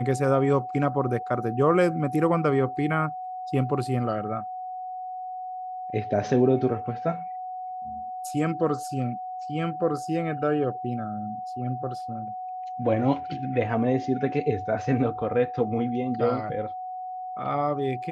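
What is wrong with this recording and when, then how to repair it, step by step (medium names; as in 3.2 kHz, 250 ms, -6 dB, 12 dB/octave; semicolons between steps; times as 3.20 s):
whine 740 Hz -32 dBFS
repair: band-stop 740 Hz, Q 30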